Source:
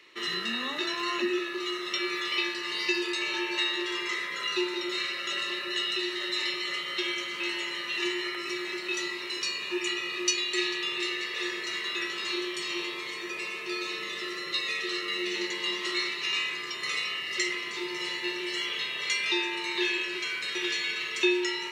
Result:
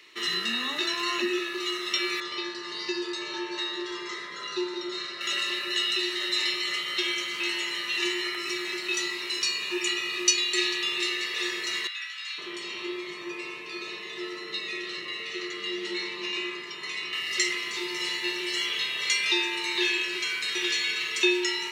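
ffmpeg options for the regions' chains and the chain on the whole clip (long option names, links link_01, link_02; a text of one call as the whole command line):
ffmpeg -i in.wav -filter_complex "[0:a]asettb=1/sr,asplit=3[link_01][link_02][link_03];[link_01]atrim=end=2.204[link_04];[link_02]atrim=start=2.2:end=5.21,asetpts=PTS-STARTPTS,afade=type=in:duration=0.004:curve=qsin,afade=type=out:start_time=3.006:duration=0.004:curve=qsin,lowpass=4700,equalizer=frequency=2500:width=1.5:gain=-12.5[link_05];[link_03]atrim=start=5.206[link_06];[link_04][link_05]acrossfade=duration=0.004:curve1=hsin:curve2=qsin[link_07];[link_07][link_06]acrossfade=duration=0.004:curve1=qsin:curve2=hsin,asettb=1/sr,asplit=3[link_08][link_09][link_10];[link_08]atrim=end=11.874[link_11];[link_09]atrim=start=11.87:end=17.13,asetpts=PTS-STARTPTS,afade=type=in:duration=0.004:curve=qsin,afade=type=out:start_time=5.256:duration=0.004:curve=qsin,lowpass=frequency=1800:poles=1,acrossover=split=1400[link_12][link_13];[link_12]adelay=510[link_14];[link_14][link_13]amix=inputs=2:normalize=0,atrim=end_sample=231966[link_15];[link_10]atrim=start=17.126[link_16];[link_11][link_15]acrossfade=duration=0.004:curve1=hsin:curve2=qsin[link_17];[link_17][link_16]acrossfade=duration=0.004:curve1=qsin:curve2=hsin,highshelf=frequency=3400:gain=7.5,bandreject=frequency=530:width=12" out.wav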